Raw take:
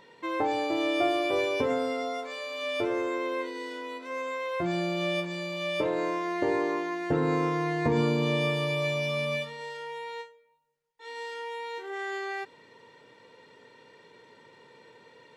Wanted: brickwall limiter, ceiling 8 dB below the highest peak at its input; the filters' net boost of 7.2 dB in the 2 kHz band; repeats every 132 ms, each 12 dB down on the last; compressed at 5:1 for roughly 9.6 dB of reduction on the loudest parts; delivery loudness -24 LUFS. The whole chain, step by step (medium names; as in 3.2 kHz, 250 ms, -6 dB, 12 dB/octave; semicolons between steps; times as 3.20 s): peaking EQ 2 kHz +8.5 dB; compression 5:1, threshold -32 dBFS; peak limiter -29.5 dBFS; feedback delay 132 ms, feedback 25%, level -12 dB; trim +12.5 dB